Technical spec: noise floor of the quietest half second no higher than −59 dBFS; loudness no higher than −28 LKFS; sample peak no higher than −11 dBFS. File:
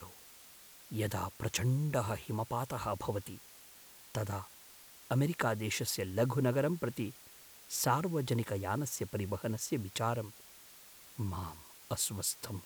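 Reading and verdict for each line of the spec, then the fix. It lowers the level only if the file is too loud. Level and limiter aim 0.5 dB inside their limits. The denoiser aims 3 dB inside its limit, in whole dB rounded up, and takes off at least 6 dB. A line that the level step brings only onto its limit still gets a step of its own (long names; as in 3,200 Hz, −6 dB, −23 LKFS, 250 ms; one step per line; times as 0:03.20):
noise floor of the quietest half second −56 dBFS: out of spec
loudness −35.5 LKFS: in spec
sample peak −16.5 dBFS: in spec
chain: broadband denoise 6 dB, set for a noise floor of −56 dBFS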